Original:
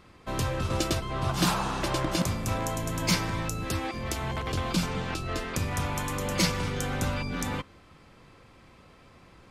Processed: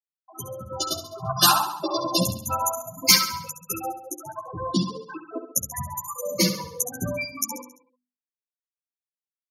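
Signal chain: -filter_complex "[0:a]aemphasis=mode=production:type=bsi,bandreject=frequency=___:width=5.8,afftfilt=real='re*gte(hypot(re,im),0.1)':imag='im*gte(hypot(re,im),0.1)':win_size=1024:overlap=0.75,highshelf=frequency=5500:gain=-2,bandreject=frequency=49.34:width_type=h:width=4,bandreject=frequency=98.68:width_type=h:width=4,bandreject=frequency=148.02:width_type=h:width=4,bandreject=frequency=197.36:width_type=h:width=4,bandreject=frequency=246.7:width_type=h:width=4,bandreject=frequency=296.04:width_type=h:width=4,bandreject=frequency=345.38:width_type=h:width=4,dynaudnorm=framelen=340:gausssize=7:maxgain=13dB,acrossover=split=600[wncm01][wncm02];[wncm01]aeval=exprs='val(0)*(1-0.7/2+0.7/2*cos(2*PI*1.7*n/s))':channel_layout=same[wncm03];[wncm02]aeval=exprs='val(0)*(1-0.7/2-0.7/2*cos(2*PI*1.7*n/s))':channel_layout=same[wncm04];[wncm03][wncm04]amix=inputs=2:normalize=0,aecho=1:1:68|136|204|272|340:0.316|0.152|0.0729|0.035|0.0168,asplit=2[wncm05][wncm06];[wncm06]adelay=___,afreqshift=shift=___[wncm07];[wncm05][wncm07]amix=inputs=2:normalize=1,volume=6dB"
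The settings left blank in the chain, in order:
7800, 10.9, 1.2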